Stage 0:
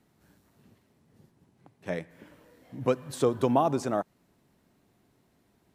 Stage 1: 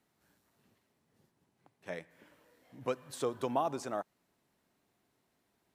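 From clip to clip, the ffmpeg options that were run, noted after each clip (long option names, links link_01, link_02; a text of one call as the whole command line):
ffmpeg -i in.wav -af "lowshelf=frequency=380:gain=-10,volume=-5dB" out.wav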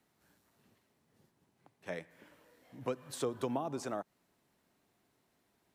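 ffmpeg -i in.wav -filter_complex "[0:a]acrossover=split=390[link_01][link_02];[link_02]acompressor=threshold=-38dB:ratio=6[link_03];[link_01][link_03]amix=inputs=2:normalize=0,volume=1.5dB" out.wav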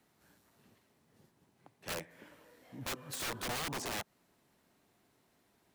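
ffmpeg -i in.wav -af "aeval=exprs='(mod(63.1*val(0)+1,2)-1)/63.1':channel_layout=same,volume=3.5dB" out.wav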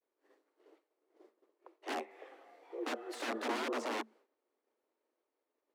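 ffmpeg -i in.wav -af "afreqshift=220,aemphasis=mode=reproduction:type=riaa,agate=range=-33dB:threshold=-59dB:ratio=3:detection=peak,volume=2dB" out.wav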